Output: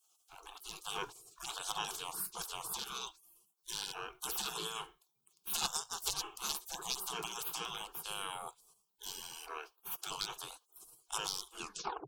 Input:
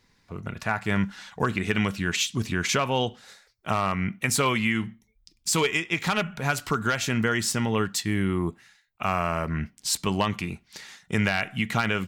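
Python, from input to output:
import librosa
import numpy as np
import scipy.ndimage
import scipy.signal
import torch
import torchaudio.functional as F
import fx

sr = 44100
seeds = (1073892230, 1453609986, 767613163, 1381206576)

y = fx.tape_stop_end(x, sr, length_s=0.57)
y = fx.spec_gate(y, sr, threshold_db=-25, keep='weak')
y = fx.fixed_phaser(y, sr, hz=390.0, stages=8)
y = y * librosa.db_to_amplitude(7.5)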